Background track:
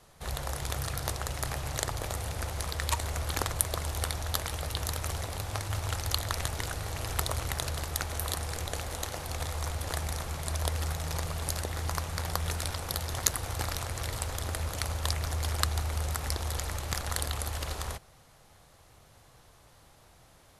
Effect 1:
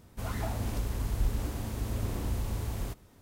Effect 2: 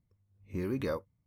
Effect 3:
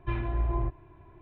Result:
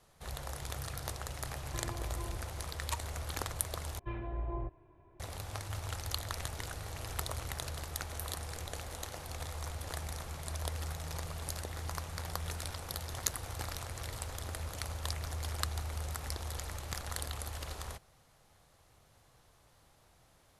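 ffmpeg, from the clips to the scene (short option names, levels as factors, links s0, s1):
-filter_complex "[3:a]asplit=2[s0][s1];[0:a]volume=0.447[s2];[s0]acompressor=threshold=0.0251:ratio=6:attack=3.2:release=140:knee=1:detection=peak[s3];[s1]equalizer=f=540:t=o:w=1.1:g=7[s4];[s2]asplit=2[s5][s6];[s5]atrim=end=3.994[s7];[s4]atrim=end=1.21,asetpts=PTS-STARTPTS,volume=0.316[s8];[s6]atrim=start=5.196[s9];[s3]atrim=end=1.21,asetpts=PTS-STARTPTS,volume=0.562,afade=t=in:d=0.004:c=hsin,afade=t=out:st=1.206:d=0.004:c=hsin,adelay=1670[s10];[s7][s8]acrossfade=d=0.004:c1=hsin:c2=hsin[s11];[s11][s9]acrossfade=d=0.004:c1=hsin:c2=hsin[s12];[s12][s10]amix=inputs=2:normalize=0"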